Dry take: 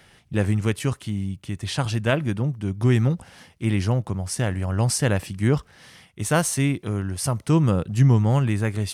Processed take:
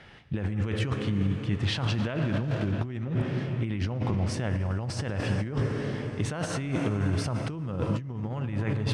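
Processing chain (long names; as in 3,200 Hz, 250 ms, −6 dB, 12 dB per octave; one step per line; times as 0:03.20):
0:01.60–0:02.71: surface crackle 490 per second −31 dBFS
convolution reverb RT60 4.5 s, pre-delay 5 ms, DRR 8.5 dB
compressor whose output falls as the input rises −27 dBFS, ratio −1
low-pass filter 3,500 Hz 12 dB per octave
level −1.5 dB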